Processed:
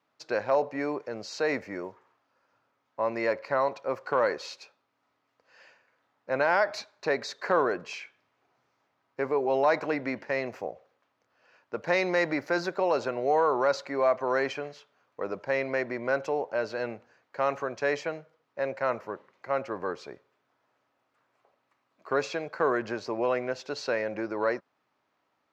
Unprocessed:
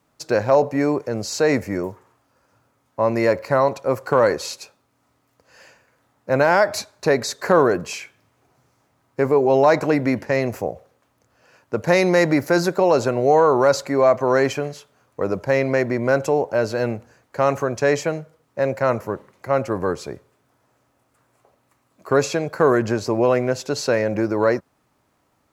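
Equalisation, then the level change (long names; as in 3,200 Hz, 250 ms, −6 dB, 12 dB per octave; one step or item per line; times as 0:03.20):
high-frequency loss of the air 230 metres
spectral tilt +2.5 dB per octave
low-shelf EQ 120 Hz −12 dB
−6.0 dB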